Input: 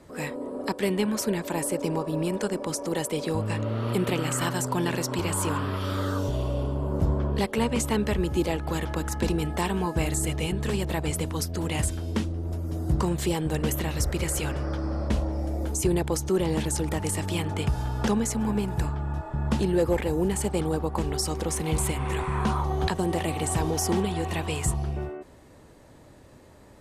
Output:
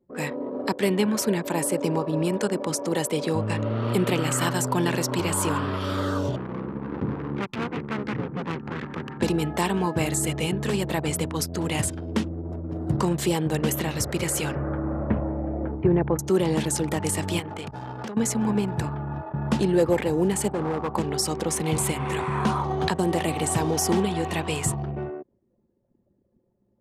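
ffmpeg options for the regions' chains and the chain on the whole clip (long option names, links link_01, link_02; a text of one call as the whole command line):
ffmpeg -i in.wav -filter_complex "[0:a]asettb=1/sr,asplit=3[link_01][link_02][link_03];[link_01]atrim=end=6.364[link_04];[link_02]atrim=start=6.36:end=9.21,asetpts=PTS-STARTPTS,afade=type=in:duration=0.004:curve=qsin,afade=type=out:start_time=2.846:duration=0.004:curve=qsin,lowpass=frequency=2100:width=0.5412,lowpass=frequency=2100:width=1.3066,aeval=exprs='abs(val(0))':channel_layout=same,equalizer=frequency=660:width=2.5:gain=-13.5[link_05];[link_03]atrim=start=9.206[link_06];[link_04][link_05]acrossfade=duration=0.004:curve1=hsin:curve2=qsin[link_07];[link_07][link_06]acrossfade=duration=0.004:curve1=qsin:curve2=hsin,asettb=1/sr,asplit=3[link_08][link_09][link_10];[link_08]atrim=end=14.554[link_11];[link_09]atrim=start=14.55:end=16.19,asetpts=PTS-STARTPTS,afade=type=in:duration=0.004:curve=qsin,afade=type=out:start_time=1.636:duration=0.004:curve=qsin,lowpass=frequency=2000:width=0.5412,lowpass=frequency=2000:width=1.3066,lowshelf=frequency=110:gain=8[link_12];[link_10]atrim=start=16.186[link_13];[link_11][link_12]acrossfade=duration=0.004:curve1=hsin:curve2=qsin[link_14];[link_14][link_13]acrossfade=duration=0.004:curve1=qsin:curve2=hsin,asettb=1/sr,asplit=3[link_15][link_16][link_17];[link_15]atrim=end=17.394[link_18];[link_16]atrim=start=17.39:end=18.17,asetpts=PTS-STARTPTS,afade=type=in:duration=0.004:curve=qsin,afade=type=out:start_time=0.776:duration=0.004:curve=qsin,lowshelf=frequency=170:gain=-9,acompressor=threshold=-30dB:ratio=8:attack=3.2:release=140:knee=1:detection=peak,aeval=exprs='clip(val(0),-1,0.02)':channel_layout=same[link_19];[link_17]atrim=start=18.166[link_20];[link_18][link_19]acrossfade=duration=0.004:curve1=hsin:curve2=qsin[link_21];[link_21][link_20]acrossfade=duration=0.004:curve1=qsin:curve2=hsin,asettb=1/sr,asplit=3[link_22][link_23][link_24];[link_22]atrim=end=20.534[link_25];[link_23]atrim=start=20.53:end=20.93,asetpts=PTS-STARTPTS,afade=type=in:duration=0.004:curve=qsin,afade=type=out:start_time=0.396:duration=0.004:curve=qsin,highshelf=frequency=1600:width_type=q:width=3:gain=-10.5,asoftclip=type=hard:threshold=-25.5dB,acrusher=bits=7:mode=log:mix=0:aa=0.000001[link_26];[link_24]atrim=start=20.926[link_27];[link_25][link_26]acrossfade=duration=0.004:curve1=hsin:curve2=qsin[link_28];[link_28][link_27]acrossfade=duration=0.004:curve1=qsin:curve2=hsin,highpass=frequency=100:width=0.5412,highpass=frequency=100:width=1.3066,anlmdn=0.631,volume=3dB" out.wav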